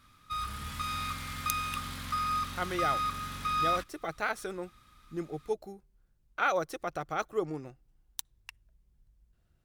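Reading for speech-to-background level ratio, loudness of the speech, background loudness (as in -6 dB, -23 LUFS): -2.5 dB, -36.0 LUFS, -33.5 LUFS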